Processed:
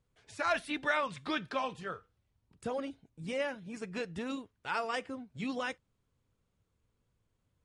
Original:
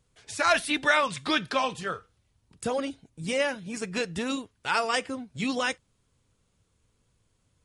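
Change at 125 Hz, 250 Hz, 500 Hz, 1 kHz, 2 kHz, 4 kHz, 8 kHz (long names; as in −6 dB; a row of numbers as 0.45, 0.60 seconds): −7.0, −7.0, −7.0, −8.0, −9.0, −12.0, −15.5 decibels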